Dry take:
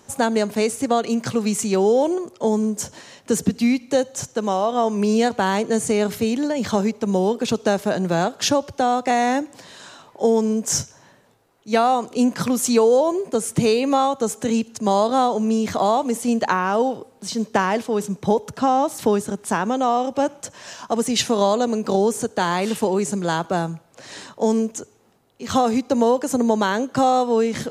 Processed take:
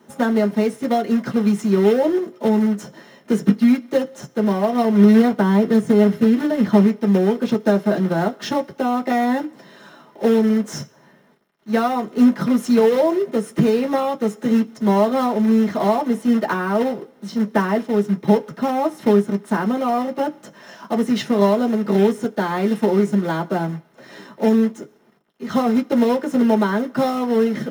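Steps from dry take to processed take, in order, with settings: 4.38–6.84 s: tilt EQ -1.5 dB/octave; companded quantiser 4-bit; reverberation RT60 0.10 s, pre-delay 3 ms, DRR -6 dB; trim -15 dB

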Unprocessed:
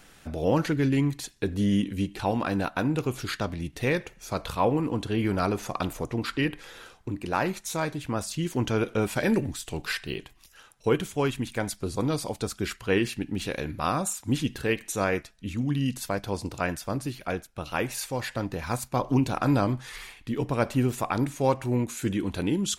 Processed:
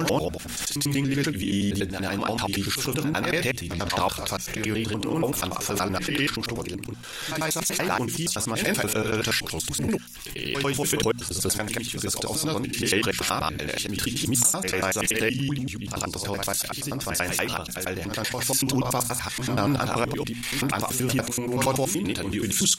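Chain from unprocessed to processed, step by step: slices played last to first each 95 ms, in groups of 7; treble shelf 2.4 kHz +12 dB; hum notches 60/120/180/240 Hz; pre-echo 97 ms -13 dB; swell ahead of each attack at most 38 dB/s; trim -1.5 dB

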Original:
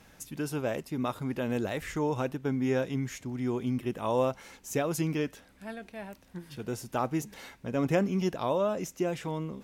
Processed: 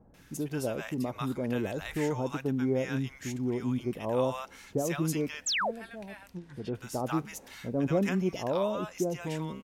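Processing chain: bands offset in time lows, highs 140 ms, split 880 Hz; 5.46–5.71 s: painted sound fall 410–8300 Hz -29 dBFS; 6.21–6.75 s: low-pass that closes with the level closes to 1.7 kHz, closed at -30 dBFS

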